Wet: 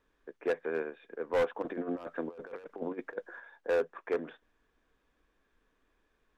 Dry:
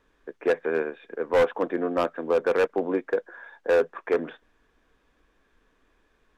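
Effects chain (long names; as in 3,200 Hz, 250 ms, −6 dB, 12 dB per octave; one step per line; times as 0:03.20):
0:01.62–0:03.40: compressor whose output falls as the input rises −29 dBFS, ratio −0.5
level −8 dB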